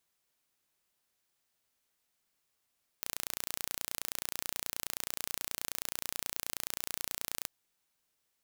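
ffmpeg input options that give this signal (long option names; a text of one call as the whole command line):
ffmpeg -f lavfi -i "aevalsrc='0.398*eq(mod(n,1500),0)':duration=4.44:sample_rate=44100" out.wav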